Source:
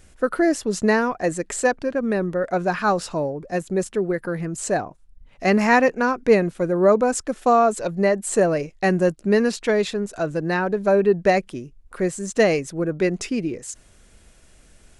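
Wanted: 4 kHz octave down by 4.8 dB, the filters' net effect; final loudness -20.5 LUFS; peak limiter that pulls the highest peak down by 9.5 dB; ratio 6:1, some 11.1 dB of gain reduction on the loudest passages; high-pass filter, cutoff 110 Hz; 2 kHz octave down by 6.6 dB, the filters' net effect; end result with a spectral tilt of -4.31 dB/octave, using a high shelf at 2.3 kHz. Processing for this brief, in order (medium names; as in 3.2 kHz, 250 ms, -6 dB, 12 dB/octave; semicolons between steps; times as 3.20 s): high-pass 110 Hz; peaking EQ 2 kHz -8.5 dB; treble shelf 2.3 kHz +4 dB; peaking EQ 4 kHz -8 dB; compression 6:1, threshold -24 dBFS; trim +11 dB; peak limiter -12 dBFS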